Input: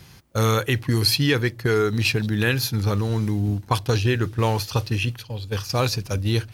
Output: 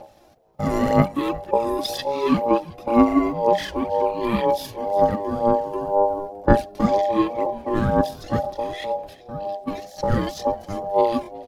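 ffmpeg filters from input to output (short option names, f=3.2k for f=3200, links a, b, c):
-filter_complex "[0:a]atempo=0.57,aphaser=in_gain=1:out_gain=1:delay=3:decay=0.67:speed=2:type=sinusoidal,aeval=exprs='val(0)*sin(2*PI*700*n/s)':c=same,tiltshelf=f=660:g=9.5,asplit=2[a][b];[b]asplit=3[c][d][e];[c]adelay=362,afreqshift=-95,volume=-20.5dB[f];[d]adelay=724,afreqshift=-190,volume=-28dB[g];[e]adelay=1086,afreqshift=-285,volume=-35.6dB[h];[f][g][h]amix=inputs=3:normalize=0[i];[a][i]amix=inputs=2:normalize=0,volume=-1.5dB"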